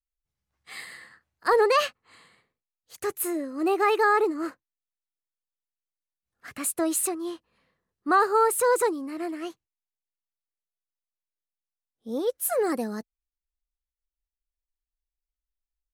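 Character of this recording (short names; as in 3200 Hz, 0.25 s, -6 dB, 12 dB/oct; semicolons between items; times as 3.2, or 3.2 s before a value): noise floor -91 dBFS; spectral tilt -2.5 dB/oct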